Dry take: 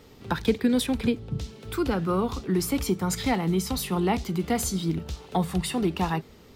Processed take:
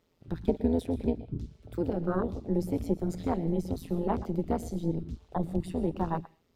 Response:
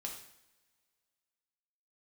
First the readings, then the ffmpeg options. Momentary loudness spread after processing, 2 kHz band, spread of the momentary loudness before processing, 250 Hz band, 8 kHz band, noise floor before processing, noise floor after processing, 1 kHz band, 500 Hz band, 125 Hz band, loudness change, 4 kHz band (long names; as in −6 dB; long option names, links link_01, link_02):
7 LU, −15.0 dB, 7 LU, −4.5 dB, −20.5 dB, −51 dBFS, −71 dBFS, −6.5 dB, −3.0 dB, −4.0 dB, −5.0 dB, −20.5 dB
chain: -filter_complex "[0:a]tremolo=f=170:d=0.947,asplit=2[link_01][link_02];[1:a]atrim=start_sample=2205,afade=type=out:start_time=0.18:duration=0.01,atrim=end_sample=8379,adelay=116[link_03];[link_02][link_03]afir=irnorm=-1:irlink=0,volume=-11.5dB[link_04];[link_01][link_04]amix=inputs=2:normalize=0,afwtdn=0.0316"